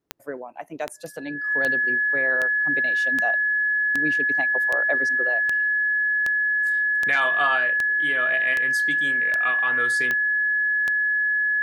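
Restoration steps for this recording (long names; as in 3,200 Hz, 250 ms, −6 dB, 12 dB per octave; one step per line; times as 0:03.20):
click removal
notch filter 1,700 Hz, Q 30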